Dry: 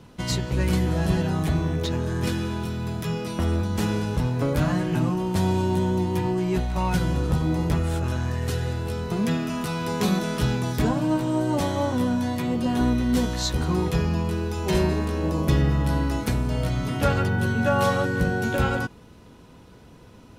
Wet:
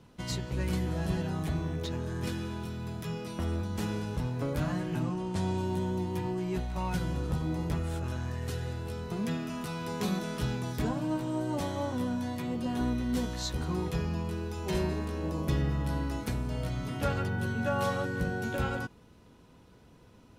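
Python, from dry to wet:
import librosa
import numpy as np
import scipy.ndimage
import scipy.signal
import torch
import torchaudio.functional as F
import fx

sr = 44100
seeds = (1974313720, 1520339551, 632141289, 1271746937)

y = fx.lowpass(x, sr, hz=10000.0, slope=24, at=(5.03, 5.58))
y = y * librosa.db_to_amplitude(-8.5)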